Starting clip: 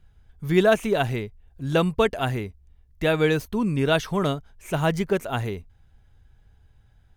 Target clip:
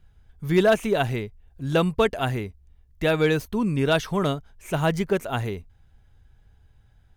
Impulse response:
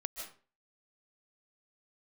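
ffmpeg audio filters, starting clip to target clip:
-af "asoftclip=type=hard:threshold=-11dB"

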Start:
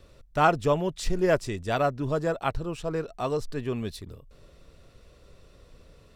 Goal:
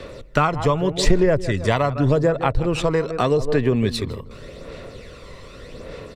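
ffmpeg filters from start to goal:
ffmpeg -i in.wav -filter_complex "[0:a]equalizer=frequency=125:width_type=o:width=1:gain=4,equalizer=frequency=250:width_type=o:width=1:gain=7,equalizer=frequency=500:width_type=o:width=1:gain=11,equalizer=frequency=1000:width_type=o:width=1:gain=6,equalizer=frequency=2000:width_type=o:width=1:gain=12,equalizer=frequency=4000:width_type=o:width=1:gain=7,equalizer=frequency=8000:width_type=o:width=1:gain=6,asplit=2[link_01][link_02];[link_02]adelay=159,lowpass=frequency=1200:poles=1,volume=-13.5dB,asplit=2[link_03][link_04];[link_04]adelay=159,lowpass=frequency=1200:poles=1,volume=0.36,asplit=2[link_05][link_06];[link_06]adelay=159,lowpass=frequency=1200:poles=1,volume=0.36[link_07];[link_03][link_05][link_07]amix=inputs=3:normalize=0[link_08];[link_01][link_08]amix=inputs=2:normalize=0,aphaser=in_gain=1:out_gain=1:delay=1:decay=0.44:speed=0.84:type=sinusoidal,acrossover=split=120[link_09][link_10];[link_10]acompressor=threshold=-22dB:ratio=8[link_11];[link_09][link_11]amix=inputs=2:normalize=0,volume=5.5dB" out.wav

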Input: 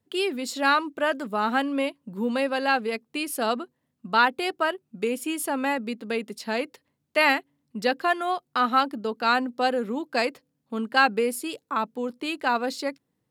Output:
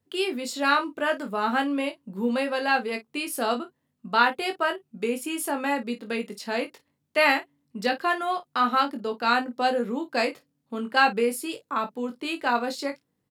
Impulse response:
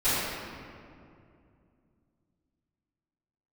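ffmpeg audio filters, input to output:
-af "aecho=1:1:21|52:0.531|0.178,volume=-1.5dB"

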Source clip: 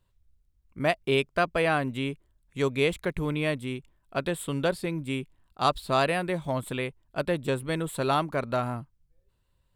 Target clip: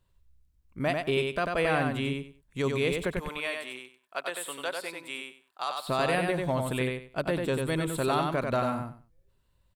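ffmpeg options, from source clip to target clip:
ffmpeg -i in.wav -filter_complex "[0:a]alimiter=limit=-17.5dB:level=0:latency=1:release=52,asplit=3[link_01][link_02][link_03];[link_01]afade=type=out:start_time=3.18:duration=0.02[link_04];[link_02]highpass=740,afade=type=in:start_time=3.18:duration=0.02,afade=type=out:start_time=5.87:duration=0.02[link_05];[link_03]afade=type=in:start_time=5.87:duration=0.02[link_06];[link_04][link_05][link_06]amix=inputs=3:normalize=0,aecho=1:1:94|188|282:0.631|0.133|0.0278" out.wav

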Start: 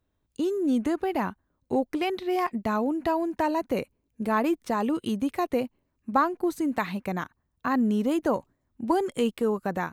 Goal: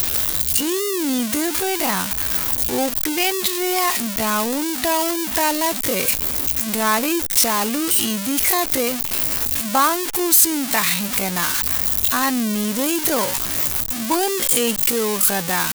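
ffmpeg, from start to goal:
ffmpeg -i in.wav -af "aeval=exprs='val(0)+0.5*0.0473*sgn(val(0))':channel_layout=same,crystalizer=i=8.5:c=0,atempo=0.63,volume=-1dB" out.wav

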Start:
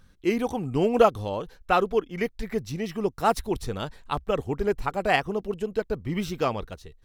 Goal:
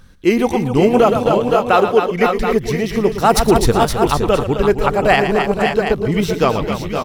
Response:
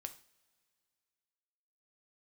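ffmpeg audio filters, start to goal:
-filter_complex "[0:a]asettb=1/sr,asplit=3[link_01][link_02][link_03];[link_01]atrim=end=1.184[link_04];[link_02]atrim=start=1.18:end=2.07,asetpts=PTS-STARTPTS,afade=type=in:duration=0.004:curve=qsin,afade=type=out:start_time=0.886:duration=0.004:curve=qsin,highpass=190[link_05];[link_03]atrim=start=2.066[link_06];[link_04][link_05]acrossfade=duration=0.004:curve1=hsin:curve2=qsin[link_07];[link_07][link_06]acrossfade=duration=0.004:curve1=qsin:curve2=hsin,asplit=3[link_08][link_09][link_10];[link_08]afade=type=out:start_time=3.28:duration=0.02[link_11];[link_09]acontrast=71,afade=type=in:start_time=3.28:duration=0.02,afade=type=out:start_time=3.7:duration=0.02[link_12];[link_10]afade=type=in:start_time=3.7:duration=0.02[link_13];[link_11][link_12][link_13]amix=inputs=3:normalize=0,asplit=2[link_14][link_15];[link_15]aecho=0:1:115|263|514|534|726:0.237|0.335|0.355|0.299|0.266[link_16];[link_14][link_16]amix=inputs=2:normalize=0,alimiter=level_in=11.5dB:limit=-1dB:release=50:level=0:latency=1,volume=-1dB"

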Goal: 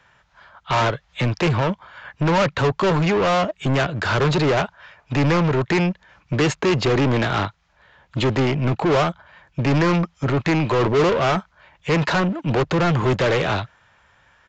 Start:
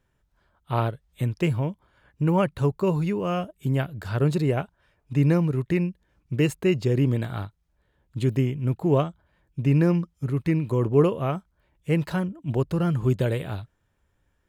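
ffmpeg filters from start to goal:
ffmpeg -i in.wav -filter_complex "[0:a]highshelf=frequency=4700:gain=-9.5,acrossover=split=210|550|1300[link_01][link_02][link_03][link_04];[link_02]aeval=exprs='sgn(val(0))*max(abs(val(0))-0.00112,0)':channel_layout=same[link_05];[link_01][link_05][link_03][link_04]amix=inputs=4:normalize=0,asplit=2[link_06][link_07];[link_07]highpass=frequency=720:poles=1,volume=31dB,asoftclip=type=tanh:threshold=-11.5dB[link_08];[link_06][link_08]amix=inputs=2:normalize=0,lowpass=frequency=5600:poles=1,volume=-6dB,aresample=16000,aresample=44100" out.wav

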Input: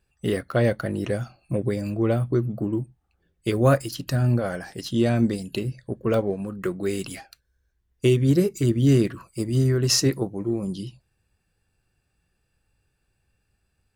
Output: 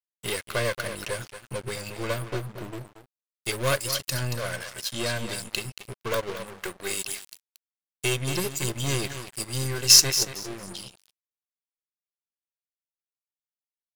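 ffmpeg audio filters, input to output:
ffmpeg -i in.wav -filter_complex "[0:a]aeval=exprs='0.501*(cos(1*acos(clip(val(0)/0.501,-1,1)))-cos(1*PI/2))+0.0355*(cos(4*acos(clip(val(0)/0.501,-1,1)))-cos(4*PI/2))+0.0562*(cos(5*acos(clip(val(0)/0.501,-1,1)))-cos(5*PI/2))+0.0224*(cos(6*acos(clip(val(0)/0.501,-1,1)))-cos(6*PI/2))+0.0447*(cos(8*acos(clip(val(0)/0.501,-1,1)))-cos(8*PI/2))':channel_layout=same,aecho=1:1:1.9:0.49,asplit=2[link_01][link_02];[link_02]aecho=0:1:229|458|687:0.335|0.0703|0.0148[link_03];[link_01][link_03]amix=inputs=2:normalize=0,acompressor=mode=upward:threshold=-34dB:ratio=2.5,aeval=exprs='sgn(val(0))*max(abs(val(0))-0.0251,0)':channel_layout=same,tiltshelf=frequency=1300:gain=-9.5,volume=-3.5dB" out.wav

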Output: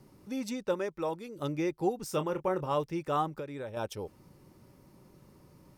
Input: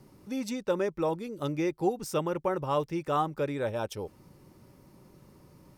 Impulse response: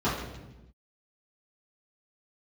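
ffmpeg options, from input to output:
-filter_complex "[0:a]asettb=1/sr,asplit=3[link_01][link_02][link_03];[link_01]atrim=end=0.744[link_04];[link_02]atrim=start=0.74:end=1.36,asetpts=PTS-STARTPTS,afade=type=in:duration=0.004:curve=qsin,afade=type=out:start_time=0.616:duration=0.004:curve=qsin,lowshelf=frequency=390:gain=-6.5[link_05];[link_03]atrim=start=1.356[link_06];[link_04][link_05]acrossfade=duration=0.004:curve1=hsin:curve2=qsin[link_07];[link_07][link_06]acrossfade=duration=0.004:curve1=qsin:curve2=hsin,asettb=1/sr,asplit=3[link_08][link_09][link_10];[link_08]atrim=end=2.104[link_11];[link_09]atrim=start=2.1:end=2.74,asetpts=PTS-STARTPTS,afade=type=in:duration=0.004:curve=qsin,afade=type=out:start_time=0.636:duration=0.004:curve=qsin,asplit=2[link_12][link_13];[link_13]adelay=27,volume=-10.5dB[link_14];[link_12][link_14]amix=inputs=2:normalize=0,atrim=end_sample=28224[link_15];[link_10]atrim=start=2.736[link_16];[link_11][link_15]acrossfade=duration=0.004:curve1=hsin:curve2=qsin[link_17];[link_17][link_16]acrossfade=duration=0.004:curve1=qsin:curve2=hsin,asettb=1/sr,asplit=3[link_18][link_19][link_20];[link_18]atrim=end=3.284[link_21];[link_19]atrim=start=3.28:end=3.77,asetpts=PTS-STARTPTS,afade=type=in:duration=0.004:curve=qsin,afade=type=out:start_time=0.486:duration=0.004:curve=qsin,acompressor=threshold=-34dB:ratio=10[link_22];[link_20]atrim=start=3.766[link_23];[link_21][link_22]acrossfade=duration=0.004:curve1=hsin:curve2=qsin[link_24];[link_24][link_23]acrossfade=duration=0.004:curve1=qsin:curve2=hsin,volume=-2dB"

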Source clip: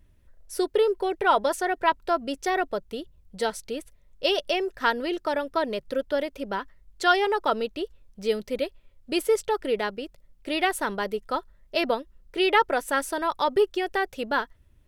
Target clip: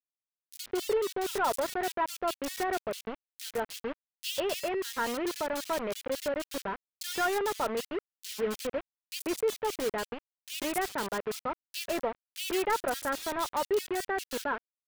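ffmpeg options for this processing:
ffmpeg -i in.wav -filter_complex "[0:a]highpass=frequency=80:width=0.5412,highpass=frequency=80:width=1.3066,asoftclip=type=tanh:threshold=-17.5dB,acrusher=bits=4:mix=0:aa=0.000001,acrossover=split=2500[link_01][link_02];[link_01]adelay=140[link_03];[link_03][link_02]amix=inputs=2:normalize=0,volume=-4.5dB" out.wav

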